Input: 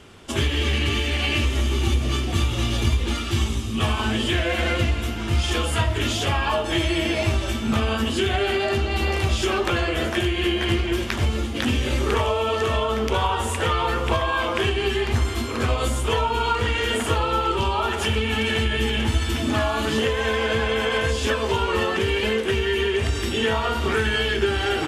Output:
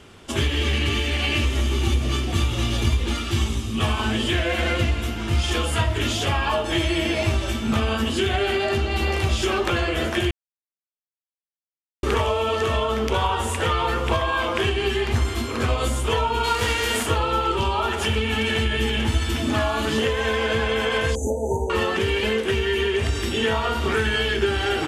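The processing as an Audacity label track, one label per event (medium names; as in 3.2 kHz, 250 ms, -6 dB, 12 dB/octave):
10.310000	12.030000	mute
16.430000	17.050000	formants flattened exponent 0.6
21.150000	21.700000	brick-wall FIR band-stop 940–5900 Hz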